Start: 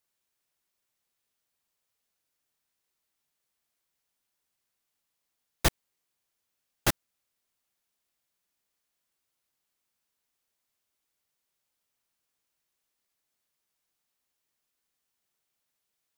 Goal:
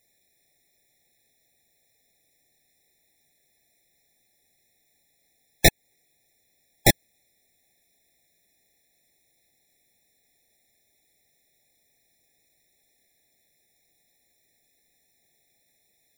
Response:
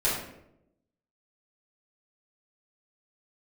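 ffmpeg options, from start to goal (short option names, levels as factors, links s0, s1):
-filter_complex "[0:a]asplit=3[s0][s1][s2];[s0]afade=t=out:st=5.67:d=0.02[s3];[s1]acompressor=threshold=0.0501:ratio=6,afade=t=in:st=5.67:d=0.02,afade=t=out:st=6.89:d=0.02[s4];[s2]afade=t=in:st=6.89:d=0.02[s5];[s3][s4][s5]amix=inputs=3:normalize=0,apsyclip=14.1,afftfilt=real='re*eq(mod(floor(b*sr/1024/850),2),0)':imag='im*eq(mod(floor(b*sr/1024/850),2),0)':win_size=1024:overlap=0.75,volume=0.473"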